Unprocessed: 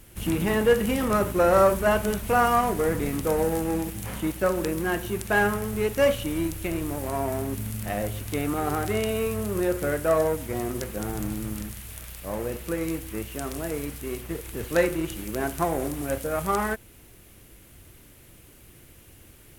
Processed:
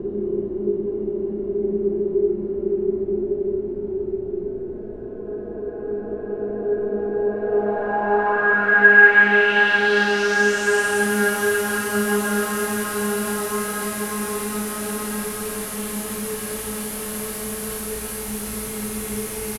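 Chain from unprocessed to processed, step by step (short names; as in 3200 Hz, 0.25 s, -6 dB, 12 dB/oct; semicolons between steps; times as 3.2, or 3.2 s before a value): HPF 250 Hz 24 dB/oct; bell 690 Hz -10 dB 1.2 oct; in parallel at -7 dB: Schmitt trigger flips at -31.5 dBFS; on the sum: requantised 6-bit, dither none; Paulstretch 29×, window 0.25 s, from 5.07; low-pass sweep 410 Hz -> 11000 Hz, 7.2–11.12; on a send: early reflections 34 ms -5 dB, 53 ms -5.5 dB; on the sum: gain +1 dB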